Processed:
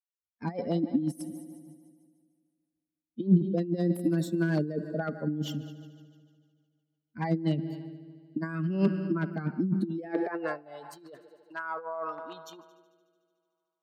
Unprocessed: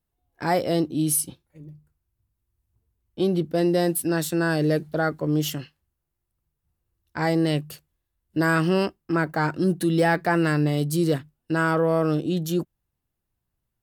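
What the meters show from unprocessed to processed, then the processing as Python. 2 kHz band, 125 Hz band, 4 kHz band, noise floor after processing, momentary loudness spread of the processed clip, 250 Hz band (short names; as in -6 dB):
-13.0 dB, -5.5 dB, -13.5 dB, under -85 dBFS, 19 LU, -5.5 dB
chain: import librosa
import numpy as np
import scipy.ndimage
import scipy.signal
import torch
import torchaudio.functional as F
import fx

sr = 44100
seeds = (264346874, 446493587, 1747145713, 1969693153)

p1 = fx.bin_expand(x, sr, power=2.0)
p2 = p1 + fx.echo_heads(p1, sr, ms=74, heads='all three', feedback_pct=57, wet_db=-23.0, dry=0)
p3 = fx.over_compress(p2, sr, threshold_db=-29.0, ratio=-0.5)
p4 = 10.0 ** (-20.0 / 20.0) * (np.abs((p3 / 10.0 ** (-20.0 / 20.0) + 3.0) % 4.0 - 2.0) - 1.0)
p5 = fx.lowpass(p4, sr, hz=1600.0, slope=6)
p6 = fx.filter_sweep_highpass(p5, sr, from_hz=200.0, to_hz=910.0, start_s=9.78, end_s=10.91, q=5.1)
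y = fx.rotary_switch(p6, sr, hz=6.3, then_hz=0.6, switch_at_s=7.12)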